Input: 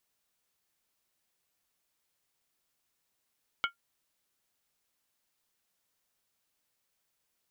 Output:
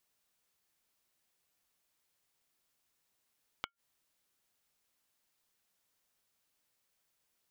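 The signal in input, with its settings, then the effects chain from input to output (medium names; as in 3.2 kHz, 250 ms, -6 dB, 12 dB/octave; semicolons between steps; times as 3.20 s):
skin hit, lowest mode 1.39 kHz, modes 4, decay 0.12 s, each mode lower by 2.5 dB, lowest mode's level -23.5 dB
inverted gate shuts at -26 dBFS, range -25 dB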